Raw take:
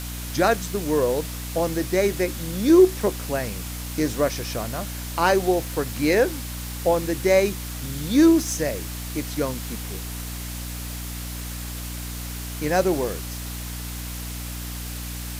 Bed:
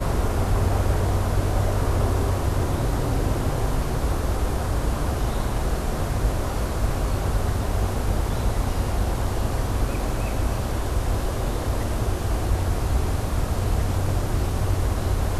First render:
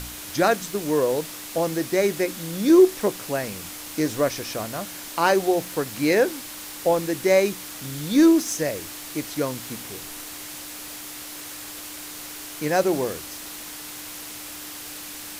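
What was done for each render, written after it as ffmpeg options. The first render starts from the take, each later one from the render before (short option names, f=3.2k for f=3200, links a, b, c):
-af "bandreject=f=60:t=h:w=4,bandreject=f=120:t=h:w=4,bandreject=f=180:t=h:w=4,bandreject=f=240:t=h:w=4"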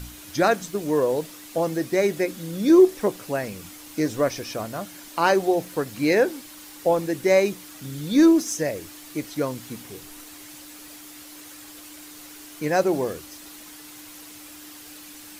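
-af "afftdn=nr=8:nf=-37"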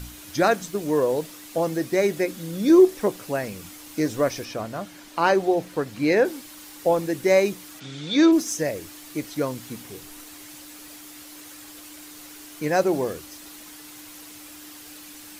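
-filter_complex "[0:a]asettb=1/sr,asplit=3[a][b][c];[a]atrim=end=4.454[d];[b]atrim=start=4.45:end=6.25,asetpts=PTS-STARTPTS,afade=t=in:d=0.004:c=qsin,afade=t=out:st=1.796:d=0.004:c=qsin,highshelf=f=6.7k:g=-9.5[e];[c]atrim=start=6.246[f];[d][e]acrossfade=d=0.004:c1=hsin:c2=qsin[g];[g][f]acrossfade=d=0.004:c1=qsin:c2=hsin,asplit=3[h][i][j];[h]afade=t=out:st=7.79:d=0.02[k];[i]highpass=160,equalizer=f=230:t=q:w=4:g=-9,equalizer=f=730:t=q:w=4:g=4,equalizer=f=1.4k:t=q:w=4:g=4,equalizer=f=2.3k:t=q:w=4:g=6,equalizer=f=3.5k:t=q:w=4:g=8,lowpass=f=6.8k:w=0.5412,lowpass=f=6.8k:w=1.3066,afade=t=in:st=7.79:d=0.02,afade=t=out:st=8.31:d=0.02[l];[j]afade=t=in:st=8.31:d=0.02[m];[k][l][m]amix=inputs=3:normalize=0"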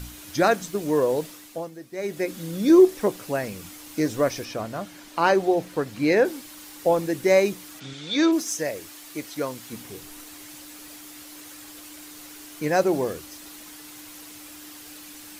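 -filter_complex "[0:a]asettb=1/sr,asplit=3[a][b][c];[a]atrim=end=7.934[d];[b]atrim=start=7.93:end=9.73,asetpts=PTS-STARTPTS,afade=t=in:d=0.004:c=qsin,afade=t=out:st=1.796:d=0.004:c=qsin,lowshelf=f=300:g=-8.5[e];[c]atrim=start=9.726[f];[d][e]acrossfade=d=0.004:c1=hsin:c2=qsin[g];[g][f]acrossfade=d=0.004:c1=qsin:c2=hsin,asplit=3[h][i][j];[h]atrim=end=1.71,asetpts=PTS-STARTPTS,afade=t=out:st=1.27:d=0.44:silence=0.177828[k];[i]atrim=start=1.71:end=1.93,asetpts=PTS-STARTPTS,volume=-15dB[l];[j]atrim=start=1.93,asetpts=PTS-STARTPTS,afade=t=in:d=0.44:silence=0.177828[m];[k][l][m]concat=n=3:v=0:a=1"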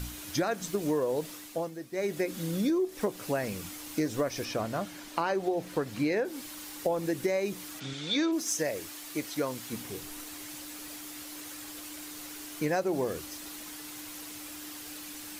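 -af "alimiter=limit=-12.5dB:level=0:latency=1:release=194,acompressor=threshold=-26dB:ratio=5"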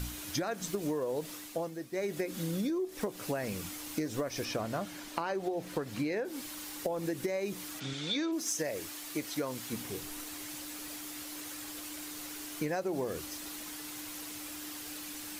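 -af "acompressor=threshold=-30dB:ratio=6"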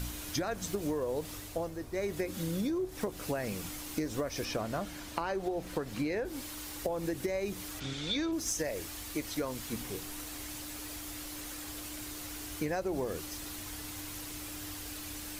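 -filter_complex "[1:a]volume=-28dB[a];[0:a][a]amix=inputs=2:normalize=0"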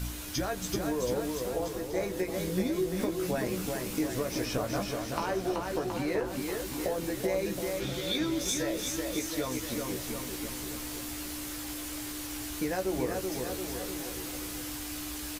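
-filter_complex "[0:a]asplit=2[a][b];[b]adelay=16,volume=-5dB[c];[a][c]amix=inputs=2:normalize=0,aecho=1:1:380|722|1030|1307|1556:0.631|0.398|0.251|0.158|0.1"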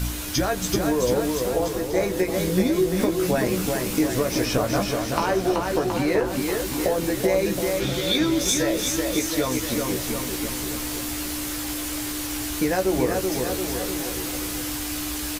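-af "volume=9dB"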